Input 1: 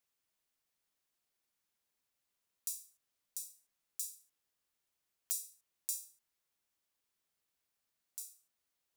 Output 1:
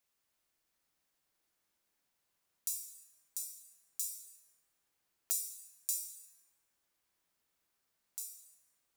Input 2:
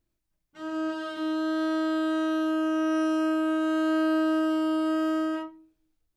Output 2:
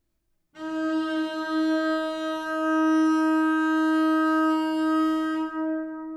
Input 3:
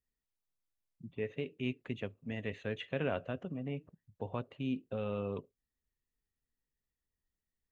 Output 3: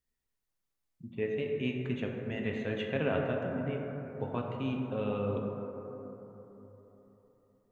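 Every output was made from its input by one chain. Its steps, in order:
dense smooth reverb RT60 3.8 s, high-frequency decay 0.25×, DRR 0 dB
level +2 dB

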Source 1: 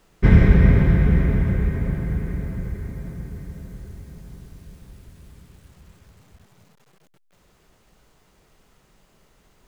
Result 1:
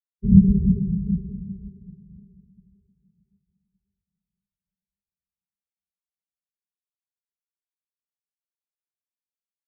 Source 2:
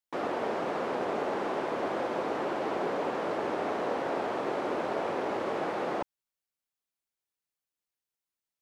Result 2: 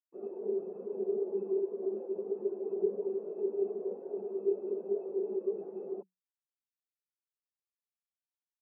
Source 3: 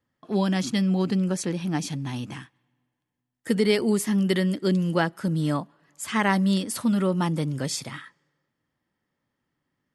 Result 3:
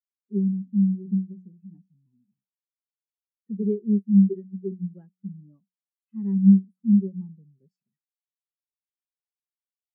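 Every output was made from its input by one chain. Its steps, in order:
hum removal 184.4 Hz, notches 2
hollow resonant body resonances 200/390/2,600 Hz, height 14 dB, ringing for 80 ms
every bin expanded away from the loudest bin 2.5 to 1
level −5 dB

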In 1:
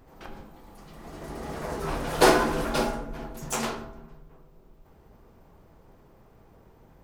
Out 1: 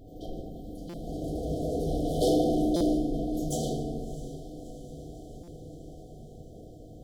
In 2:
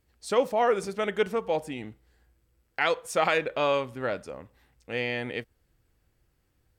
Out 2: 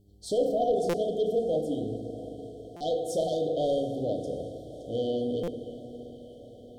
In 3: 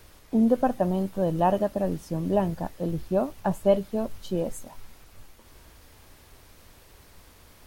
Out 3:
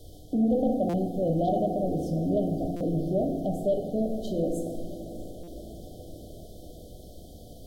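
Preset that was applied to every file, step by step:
in parallel at +2.5 dB: downward compressor, threshold −37 dBFS
on the sum: high-shelf EQ 2,300 Hz −7 dB
feedback delay network reverb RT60 1.6 s, low-frequency decay 1.25×, high-frequency decay 0.5×, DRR 1.5 dB
hum with harmonics 100 Hz, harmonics 4, −59 dBFS
soft clipping −16 dBFS
brick-wall band-stop 780–3,000 Hz
on a send: feedback delay with all-pass diffusion 656 ms, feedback 67%, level −16 dB
on the sum: buffer that repeats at 0:00.89/0:02.76/0:05.43, samples 256, times 7
level −2.5 dB

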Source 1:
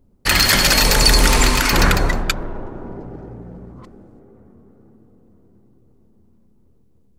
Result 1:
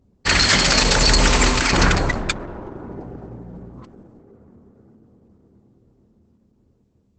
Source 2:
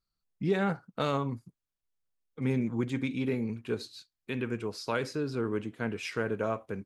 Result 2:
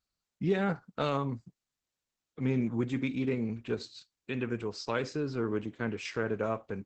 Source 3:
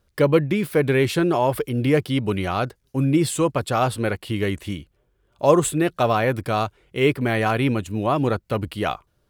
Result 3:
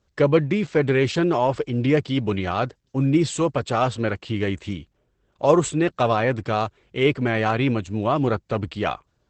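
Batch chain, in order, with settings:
high-pass filter 40 Hz 12 dB per octave
Opus 12 kbit/s 48,000 Hz

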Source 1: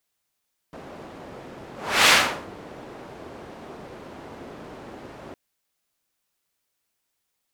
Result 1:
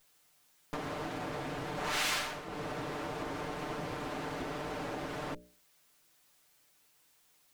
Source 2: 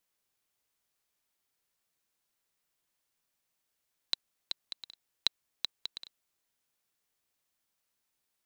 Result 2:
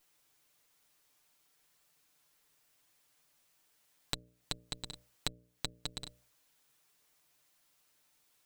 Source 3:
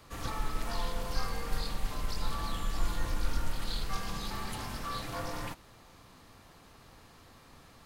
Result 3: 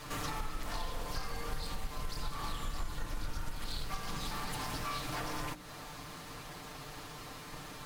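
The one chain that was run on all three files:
lower of the sound and its delayed copy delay 6.7 ms
mains-hum notches 60/120/180/240/300/360/420/480/540/600 Hz
downward compressor 4 to 1, threshold −48 dBFS
level +11.5 dB

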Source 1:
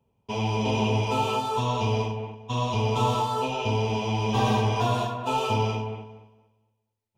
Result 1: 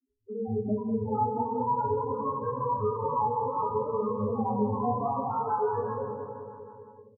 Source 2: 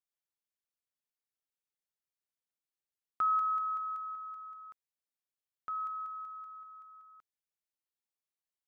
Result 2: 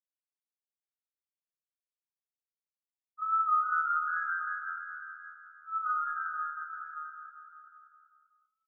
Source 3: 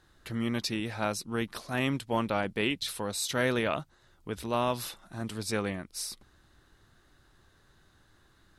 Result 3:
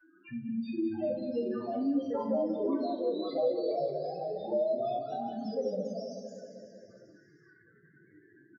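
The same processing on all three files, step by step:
high-pass filter 170 Hz 12 dB per octave
bit reduction 11 bits
high-shelf EQ 11,000 Hz −5 dB
tape wow and flutter 53 cents
treble cut that deepens with the level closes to 2,600 Hz, closed at −28 dBFS
spectral peaks only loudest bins 1
on a send: repeating echo 194 ms, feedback 59%, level −10 dB
on the sum: rectangular room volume 45 cubic metres, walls mixed, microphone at 2.5 metres
delay with pitch and tempo change per echo 761 ms, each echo +2 semitones, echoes 2, each echo −6 dB
multiband upward and downward compressor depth 40%
level −5.5 dB

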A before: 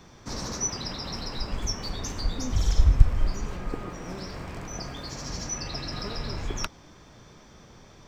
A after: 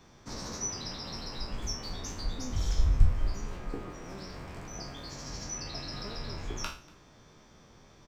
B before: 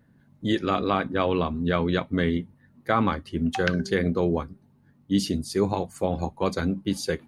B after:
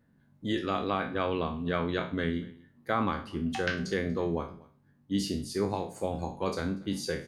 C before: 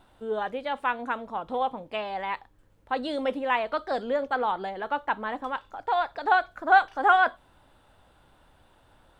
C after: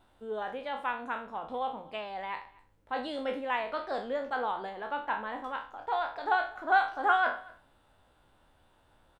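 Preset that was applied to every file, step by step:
peak hold with a decay on every bin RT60 0.39 s
mains-hum notches 60/120/180 Hz
single-tap delay 239 ms −23.5 dB
level −7 dB

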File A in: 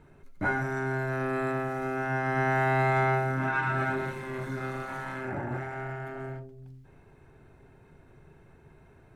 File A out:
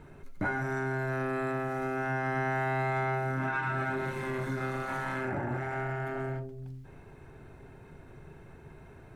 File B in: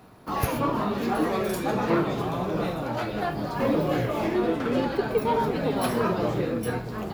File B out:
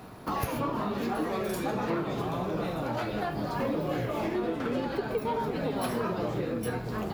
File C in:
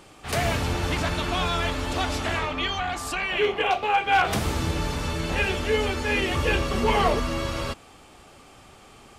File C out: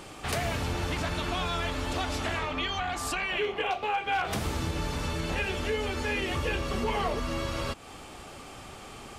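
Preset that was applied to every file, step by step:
downward compressor 3 to 1, threshold −36 dBFS
level +5 dB

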